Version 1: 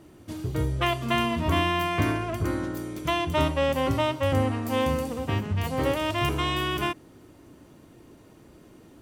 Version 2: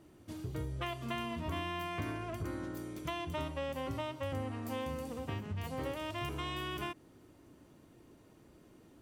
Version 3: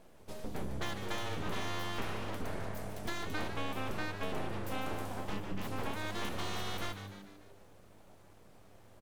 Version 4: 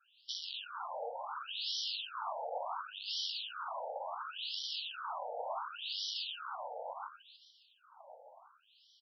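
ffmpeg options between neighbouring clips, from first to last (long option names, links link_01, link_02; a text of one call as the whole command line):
ffmpeg -i in.wav -af "acompressor=threshold=-28dB:ratio=2.5,volume=-8.5dB" out.wav
ffmpeg -i in.wav -filter_complex "[0:a]aeval=exprs='abs(val(0))':channel_layout=same,asplit=2[link_01][link_02];[link_02]asplit=5[link_03][link_04][link_05][link_06][link_07];[link_03]adelay=148,afreqshift=99,volume=-10dB[link_08];[link_04]adelay=296,afreqshift=198,volume=-16dB[link_09];[link_05]adelay=444,afreqshift=297,volume=-22dB[link_10];[link_06]adelay=592,afreqshift=396,volume=-28.1dB[link_11];[link_07]adelay=740,afreqshift=495,volume=-34.1dB[link_12];[link_08][link_09][link_10][link_11][link_12]amix=inputs=5:normalize=0[link_13];[link_01][link_13]amix=inputs=2:normalize=0,volume=2.5dB" out.wav
ffmpeg -i in.wav -af "aeval=exprs='(mod(75*val(0)+1,2)-1)/75':channel_layout=same,asuperstop=centerf=2000:order=8:qfactor=1.5,afftfilt=real='re*between(b*sr/1024,630*pow(4200/630,0.5+0.5*sin(2*PI*0.7*pts/sr))/1.41,630*pow(4200/630,0.5+0.5*sin(2*PI*0.7*pts/sr))*1.41)':imag='im*between(b*sr/1024,630*pow(4200/630,0.5+0.5*sin(2*PI*0.7*pts/sr))/1.41,630*pow(4200/630,0.5+0.5*sin(2*PI*0.7*pts/sr))*1.41)':win_size=1024:overlap=0.75,volume=11dB" out.wav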